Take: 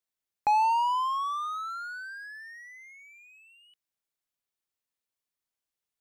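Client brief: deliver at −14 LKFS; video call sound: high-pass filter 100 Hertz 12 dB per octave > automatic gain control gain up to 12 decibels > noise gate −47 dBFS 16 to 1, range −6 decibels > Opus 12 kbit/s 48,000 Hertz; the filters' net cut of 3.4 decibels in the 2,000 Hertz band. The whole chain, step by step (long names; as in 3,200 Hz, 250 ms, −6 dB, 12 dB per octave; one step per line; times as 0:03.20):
high-pass filter 100 Hz 12 dB per octave
parametric band 2,000 Hz −5 dB
automatic gain control gain up to 12 dB
noise gate −47 dBFS 16 to 1, range −6 dB
level +15.5 dB
Opus 12 kbit/s 48,000 Hz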